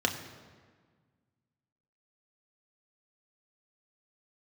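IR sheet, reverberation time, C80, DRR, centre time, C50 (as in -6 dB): 1.6 s, 10.5 dB, 2.5 dB, 24 ms, 9.0 dB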